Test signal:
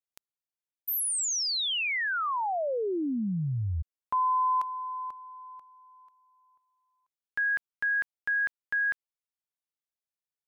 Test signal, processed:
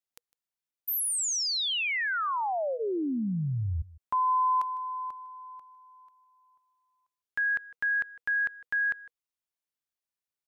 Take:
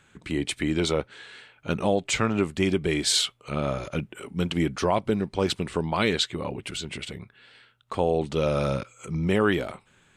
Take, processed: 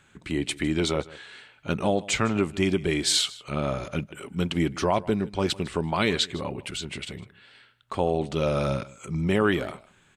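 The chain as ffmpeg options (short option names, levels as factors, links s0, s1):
-filter_complex "[0:a]bandreject=f=480:w=14,asplit=2[s0][s1];[s1]aecho=0:1:155:0.1[s2];[s0][s2]amix=inputs=2:normalize=0"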